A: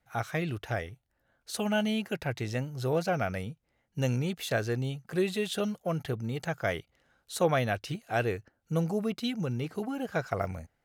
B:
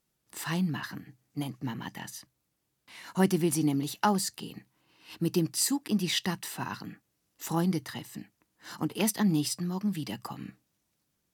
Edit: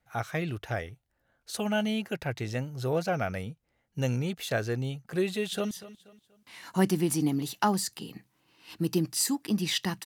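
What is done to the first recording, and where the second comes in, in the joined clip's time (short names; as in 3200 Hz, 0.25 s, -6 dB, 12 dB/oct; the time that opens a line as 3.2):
A
5.28–5.71 echo throw 0.24 s, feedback 35%, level -16 dB
5.71 switch to B from 2.12 s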